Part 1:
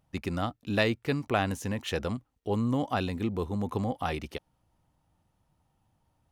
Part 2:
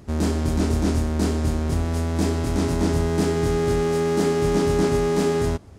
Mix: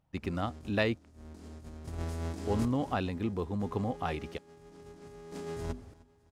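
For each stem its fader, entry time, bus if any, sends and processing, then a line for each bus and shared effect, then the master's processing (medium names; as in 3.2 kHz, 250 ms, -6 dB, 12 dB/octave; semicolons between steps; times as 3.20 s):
-2.5 dB, 0.00 s, muted 1.05–2.40 s, no send, no echo send, treble shelf 5.2 kHz -9 dB
1.05 s -22.5 dB -> 1.34 s -12 dB -> 2.95 s -12 dB -> 3.53 s -19.5 dB -> 4.44 s -19.5 dB -> 4.86 s -11 dB, 0.15 s, no send, echo send -22.5 dB, hum notches 50/100/150/200/250/300/350/400 Hz; compressor with a negative ratio -25 dBFS, ratio -0.5; square tremolo 0.58 Hz, depth 65%, duty 45%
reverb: none
echo: feedback delay 307 ms, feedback 52%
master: none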